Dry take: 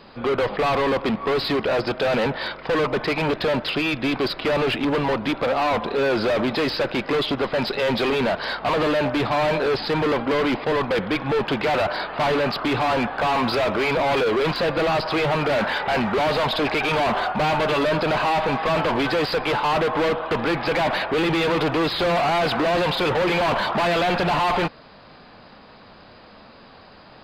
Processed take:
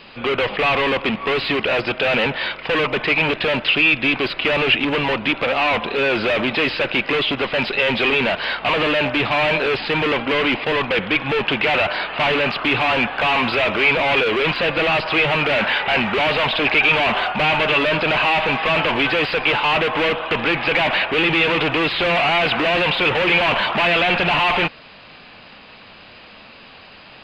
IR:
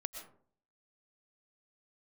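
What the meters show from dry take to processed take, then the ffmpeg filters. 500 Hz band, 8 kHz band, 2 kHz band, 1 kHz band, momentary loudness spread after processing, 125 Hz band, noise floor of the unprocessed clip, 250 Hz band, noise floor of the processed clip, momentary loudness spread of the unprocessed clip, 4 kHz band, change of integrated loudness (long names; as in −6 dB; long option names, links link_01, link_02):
+0.5 dB, can't be measured, +8.5 dB, +1.5 dB, 4 LU, 0.0 dB, −47 dBFS, 0.0 dB, −43 dBFS, 3 LU, +7.0 dB, +4.0 dB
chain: -filter_complex "[0:a]acrossover=split=3400[link_01][link_02];[link_02]acompressor=threshold=-42dB:ratio=4:attack=1:release=60[link_03];[link_01][link_03]amix=inputs=2:normalize=0,equalizer=frequency=2700:width=1.4:gain=14"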